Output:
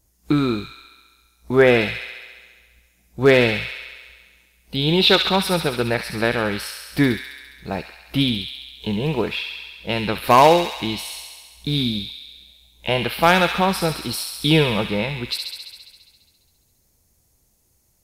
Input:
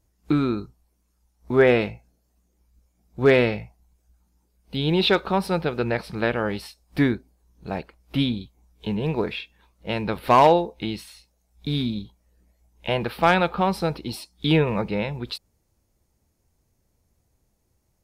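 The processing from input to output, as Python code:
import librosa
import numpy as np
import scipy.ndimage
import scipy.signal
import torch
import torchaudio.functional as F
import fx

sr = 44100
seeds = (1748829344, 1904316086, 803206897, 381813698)

p1 = fx.high_shelf(x, sr, hz=4600.0, db=10.0)
p2 = p1 + fx.echo_wet_highpass(p1, sr, ms=68, feedback_pct=75, hz=2000.0, wet_db=-4, dry=0)
y = p2 * 10.0 ** (2.5 / 20.0)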